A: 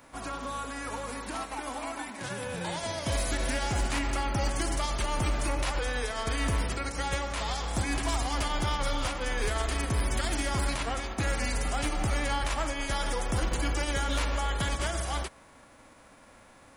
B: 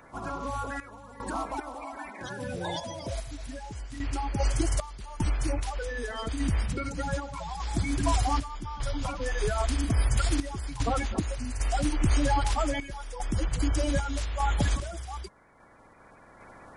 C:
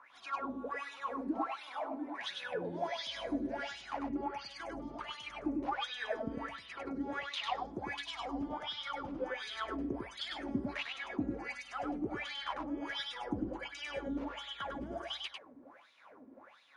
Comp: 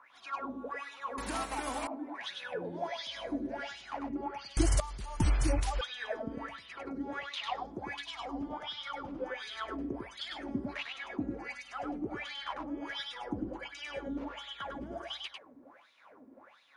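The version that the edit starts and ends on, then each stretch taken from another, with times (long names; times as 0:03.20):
C
0:01.18–0:01.87: punch in from A
0:04.57–0:05.81: punch in from B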